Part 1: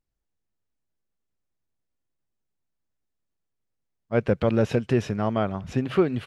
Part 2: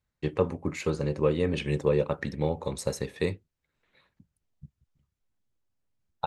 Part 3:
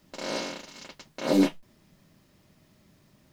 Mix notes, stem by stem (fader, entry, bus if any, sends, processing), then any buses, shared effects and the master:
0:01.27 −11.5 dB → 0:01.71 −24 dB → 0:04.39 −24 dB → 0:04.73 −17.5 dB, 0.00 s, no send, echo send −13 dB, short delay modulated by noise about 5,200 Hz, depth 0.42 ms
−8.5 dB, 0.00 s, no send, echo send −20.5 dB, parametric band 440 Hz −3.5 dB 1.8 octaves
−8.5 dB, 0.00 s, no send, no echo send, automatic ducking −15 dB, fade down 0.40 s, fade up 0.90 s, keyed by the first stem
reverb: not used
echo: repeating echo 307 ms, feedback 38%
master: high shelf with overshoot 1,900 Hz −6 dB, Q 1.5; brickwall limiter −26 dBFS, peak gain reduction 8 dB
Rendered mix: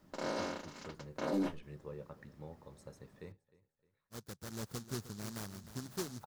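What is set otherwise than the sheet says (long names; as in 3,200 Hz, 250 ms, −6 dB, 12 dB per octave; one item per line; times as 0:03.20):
stem 2 −8.5 dB → −20.0 dB
stem 3 −8.5 dB → −2.5 dB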